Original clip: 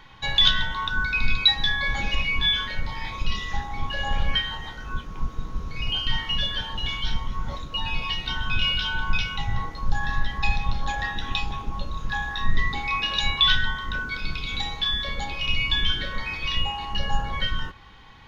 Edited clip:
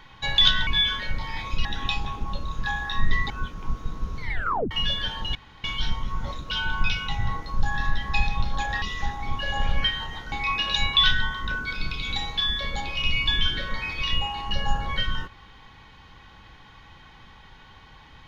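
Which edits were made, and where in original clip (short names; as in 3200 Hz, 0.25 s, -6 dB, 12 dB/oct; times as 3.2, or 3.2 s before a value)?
0.67–2.35 cut
3.33–4.83 swap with 11.11–12.76
5.72 tape stop 0.52 s
6.88 insert room tone 0.29 s
7.75–8.8 cut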